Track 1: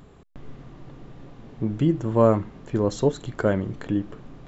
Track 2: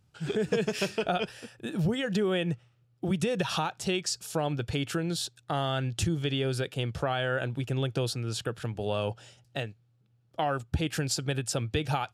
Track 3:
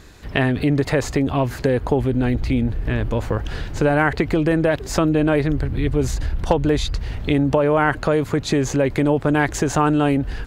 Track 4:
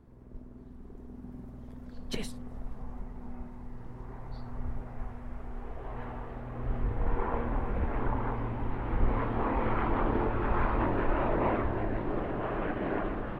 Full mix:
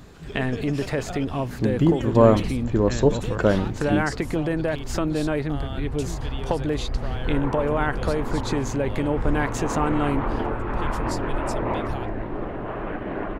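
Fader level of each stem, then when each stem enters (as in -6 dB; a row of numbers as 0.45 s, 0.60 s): +2.5 dB, -7.5 dB, -7.0 dB, +2.5 dB; 0.00 s, 0.00 s, 0.00 s, 0.25 s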